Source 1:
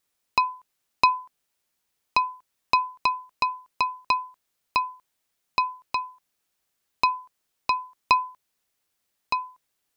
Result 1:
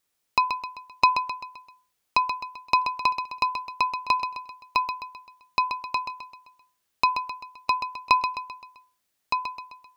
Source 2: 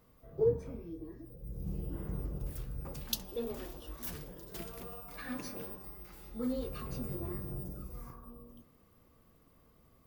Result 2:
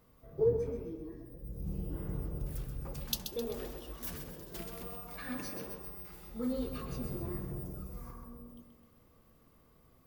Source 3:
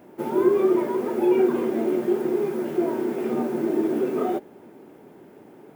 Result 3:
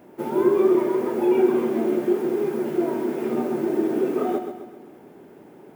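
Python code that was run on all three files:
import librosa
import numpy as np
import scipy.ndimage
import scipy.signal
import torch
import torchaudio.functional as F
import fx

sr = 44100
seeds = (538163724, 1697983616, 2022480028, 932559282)

y = fx.echo_feedback(x, sr, ms=130, feedback_pct=47, wet_db=-8.0)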